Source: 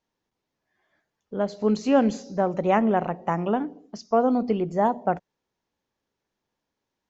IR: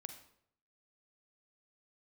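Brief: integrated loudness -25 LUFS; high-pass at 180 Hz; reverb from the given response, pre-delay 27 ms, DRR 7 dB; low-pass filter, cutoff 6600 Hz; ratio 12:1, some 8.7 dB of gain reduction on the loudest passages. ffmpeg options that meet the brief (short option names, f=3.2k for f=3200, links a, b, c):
-filter_complex "[0:a]highpass=180,lowpass=6.6k,acompressor=threshold=-22dB:ratio=12,asplit=2[a][b];[1:a]atrim=start_sample=2205,adelay=27[c];[b][c]afir=irnorm=-1:irlink=0,volume=-2.5dB[d];[a][d]amix=inputs=2:normalize=0,volume=4dB"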